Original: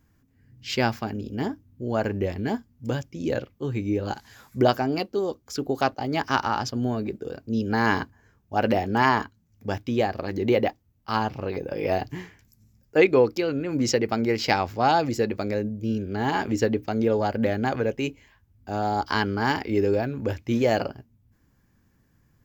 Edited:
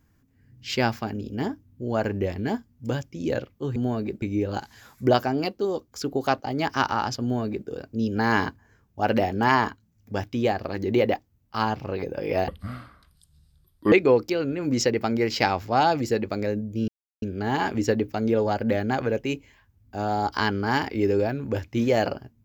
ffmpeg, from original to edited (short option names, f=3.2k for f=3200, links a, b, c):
-filter_complex "[0:a]asplit=6[a][b][c][d][e][f];[a]atrim=end=3.762[g];[b]atrim=start=6.758:end=7.222[h];[c]atrim=start=3.758:end=12.024[i];[d]atrim=start=12.02:end=13,asetpts=PTS-STARTPTS,asetrate=29988,aresample=44100[j];[e]atrim=start=12.996:end=15.96,asetpts=PTS-STARTPTS,afade=t=out:st=2.96:d=0.004:c=hsin,apad=pad_dur=0.34[k];[f]atrim=start=15.96,asetpts=PTS-STARTPTS,afade=t=in:d=0.004:c=hsin[l];[g][h]acrossfade=d=0.004:c1=hsin:c2=hsin[m];[m][i]acrossfade=d=0.004:c1=hsin:c2=hsin[n];[n][j]acrossfade=d=0.004:c1=hsin:c2=hsin[o];[k][l]concat=n=2:v=0:a=1[p];[o][p]acrossfade=d=0.004:c1=hsin:c2=hsin"